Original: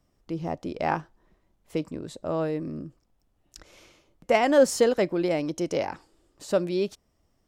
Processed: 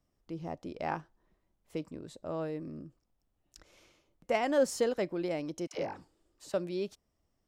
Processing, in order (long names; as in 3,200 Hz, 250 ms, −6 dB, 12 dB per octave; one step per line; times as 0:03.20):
0:05.67–0:06.54: all-pass dispersion lows, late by 77 ms, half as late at 500 Hz
level −8.5 dB